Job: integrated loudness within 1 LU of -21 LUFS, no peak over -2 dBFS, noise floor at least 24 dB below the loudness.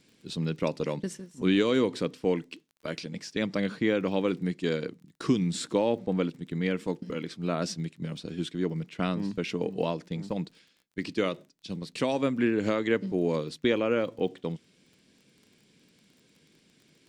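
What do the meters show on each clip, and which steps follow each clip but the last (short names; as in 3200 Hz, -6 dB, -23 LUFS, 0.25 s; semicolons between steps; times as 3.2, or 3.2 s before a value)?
ticks 22/s; loudness -30.0 LUFS; peak -13.0 dBFS; loudness target -21.0 LUFS
-> de-click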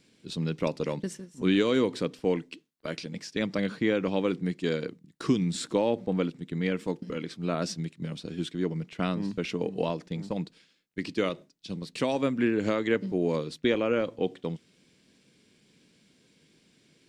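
ticks 0/s; loudness -30.0 LUFS; peak -13.0 dBFS; loudness target -21.0 LUFS
-> gain +9 dB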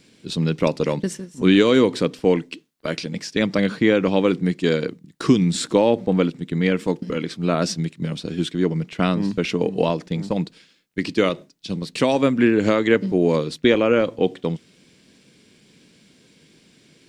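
loudness -21.0 LUFS; peak -4.0 dBFS; noise floor -56 dBFS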